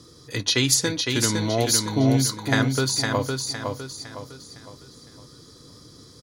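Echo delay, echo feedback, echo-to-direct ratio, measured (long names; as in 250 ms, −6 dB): 509 ms, 39%, −4.0 dB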